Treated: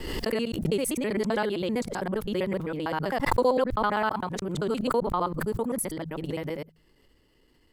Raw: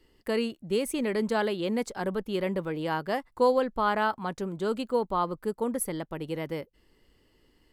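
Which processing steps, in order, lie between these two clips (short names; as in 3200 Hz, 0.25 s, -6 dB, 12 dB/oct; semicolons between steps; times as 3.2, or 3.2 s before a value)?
local time reversal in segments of 65 ms; de-hum 53.32 Hz, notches 3; backwards sustainer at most 37 dB/s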